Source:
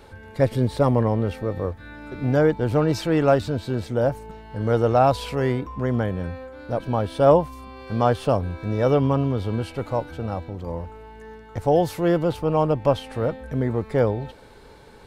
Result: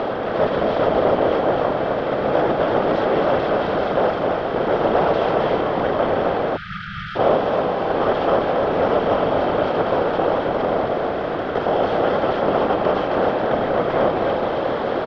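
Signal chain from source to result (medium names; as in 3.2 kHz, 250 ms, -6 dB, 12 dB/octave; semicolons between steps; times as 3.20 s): spectral levelling over time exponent 0.2; band-stop 870 Hz, Q 12; whisper effect; low-pass 3.6 kHz 24 dB/octave; bass shelf 170 Hz -10.5 dB; on a send: delay 265 ms -4 dB; on the sum: spectral selection erased 6.56–7.16 s, 210–1200 Hz; trim -6.5 dB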